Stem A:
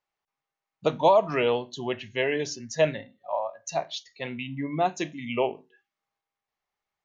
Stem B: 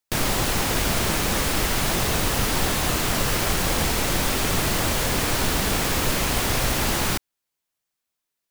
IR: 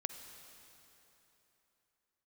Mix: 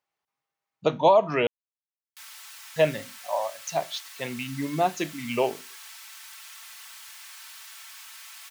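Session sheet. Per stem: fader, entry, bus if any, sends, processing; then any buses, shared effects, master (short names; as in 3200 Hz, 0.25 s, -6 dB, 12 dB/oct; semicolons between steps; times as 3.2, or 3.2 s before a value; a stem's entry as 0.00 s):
+1.0 dB, 0.00 s, muted 1.47–2.76, no send, HPF 70 Hz
-19.5 dB, 2.05 s, no send, Bessel high-pass 1600 Hz, order 8; comb 4.5 ms, depth 66%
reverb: off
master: dry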